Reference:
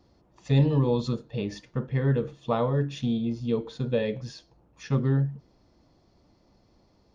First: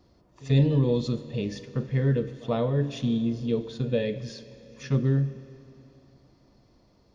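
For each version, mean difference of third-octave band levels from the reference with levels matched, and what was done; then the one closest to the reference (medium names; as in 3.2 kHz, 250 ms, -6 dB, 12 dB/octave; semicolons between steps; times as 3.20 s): 3.0 dB: band-stop 830 Hz, Q 12; dynamic bell 1.1 kHz, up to -8 dB, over -48 dBFS, Q 1.5; pre-echo 90 ms -23.5 dB; Schroeder reverb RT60 3.2 s, combs from 31 ms, DRR 13.5 dB; trim +1 dB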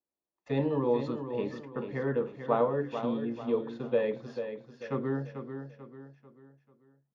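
6.0 dB: gate -50 dBFS, range -31 dB; three-band isolator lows -18 dB, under 250 Hz, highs -17 dB, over 2.4 kHz; on a send: feedback delay 441 ms, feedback 40%, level -8.5 dB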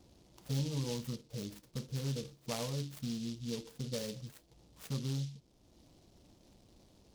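9.5 dB: local Wiener filter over 9 samples; dynamic bell 400 Hz, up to -4 dB, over -37 dBFS, Q 2.3; compression 1.5:1, threshold -57 dBFS, peak gain reduction 14 dB; delay time shaken by noise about 4.3 kHz, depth 0.16 ms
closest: first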